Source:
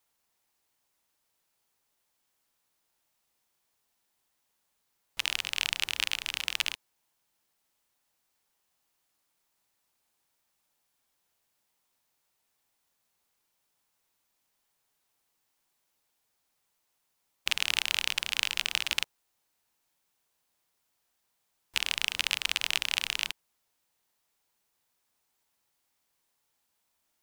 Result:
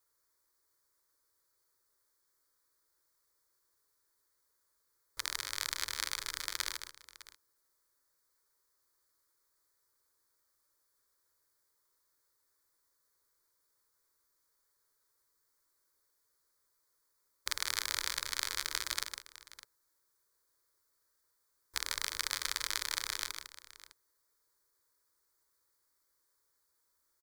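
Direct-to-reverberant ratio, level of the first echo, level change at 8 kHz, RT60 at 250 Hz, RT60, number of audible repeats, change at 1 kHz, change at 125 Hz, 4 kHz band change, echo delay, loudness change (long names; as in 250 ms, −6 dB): no reverb audible, −7.0 dB, −0.5 dB, no reverb audible, no reverb audible, 2, −1.0 dB, −3.0 dB, −8.0 dB, 153 ms, −6.5 dB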